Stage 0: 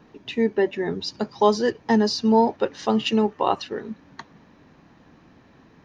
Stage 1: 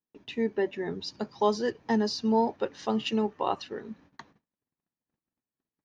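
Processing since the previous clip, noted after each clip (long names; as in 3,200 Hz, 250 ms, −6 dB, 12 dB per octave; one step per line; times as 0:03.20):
noise gate −47 dBFS, range −38 dB
level −7 dB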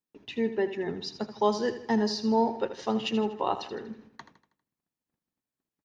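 repeating echo 80 ms, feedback 47%, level −12 dB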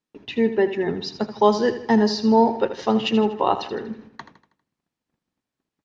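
high-frequency loss of the air 71 metres
level +8.5 dB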